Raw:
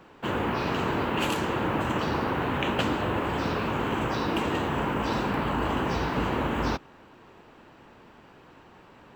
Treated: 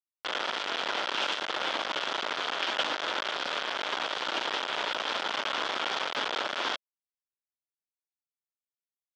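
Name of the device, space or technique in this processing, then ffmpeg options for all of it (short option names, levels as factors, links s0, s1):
hand-held game console: -af "acrusher=bits=3:mix=0:aa=0.000001,highpass=500,equalizer=f=610:t=q:w=4:g=4,equalizer=f=1400:t=q:w=4:g=5,equalizer=f=3300:t=q:w=4:g=9,lowpass=f=5400:w=0.5412,lowpass=f=5400:w=1.3066,volume=0.562"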